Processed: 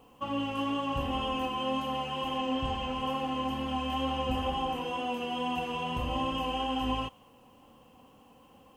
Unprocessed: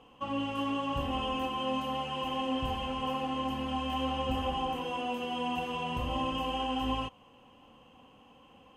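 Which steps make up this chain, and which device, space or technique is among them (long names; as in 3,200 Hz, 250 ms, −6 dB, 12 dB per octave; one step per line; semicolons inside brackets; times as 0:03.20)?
0:02.38–0:02.95: Butterworth low-pass 8,700 Hz
plain cassette with noise reduction switched in (one half of a high-frequency compander decoder only; tape wow and flutter 17 cents; white noise bed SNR 41 dB)
level +1 dB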